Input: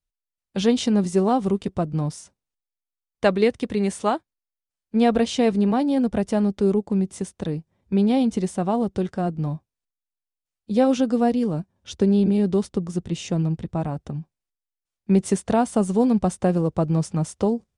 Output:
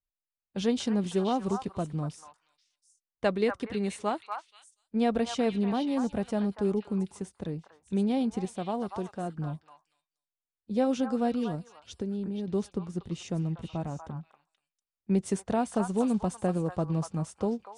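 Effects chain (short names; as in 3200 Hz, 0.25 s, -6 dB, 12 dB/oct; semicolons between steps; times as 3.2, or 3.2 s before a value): 8.45–9.38 low shelf 210 Hz -6.5 dB; 11.55–12.48 compressor 2:1, threshold -28 dBFS, peak gain reduction 7.5 dB; on a send: delay with a stepping band-pass 0.24 s, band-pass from 1200 Hz, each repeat 1.4 oct, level -1.5 dB; on the sum: mismatched tape noise reduction decoder only; gain -8 dB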